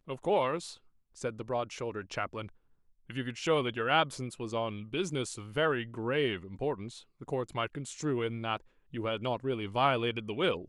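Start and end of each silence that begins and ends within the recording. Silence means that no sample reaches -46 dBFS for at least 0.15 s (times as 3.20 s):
0.75–1.17 s
2.49–3.10 s
7.01–7.21 s
8.57–8.93 s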